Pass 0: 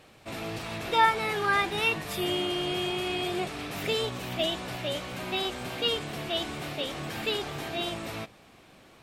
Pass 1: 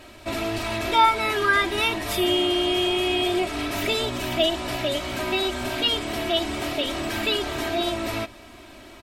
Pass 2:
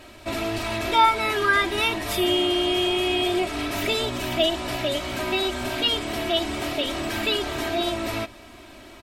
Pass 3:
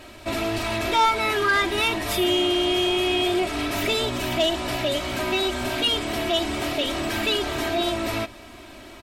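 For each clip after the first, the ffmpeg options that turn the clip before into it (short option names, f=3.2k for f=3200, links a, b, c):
-filter_complex "[0:a]lowshelf=f=64:g=6.5,aecho=1:1:3.1:0.86,asplit=2[a][b];[b]acompressor=threshold=-33dB:ratio=6,volume=2.5dB[c];[a][c]amix=inputs=2:normalize=0"
-af anull
-af "asoftclip=type=tanh:threshold=-16dB,volume=2dB"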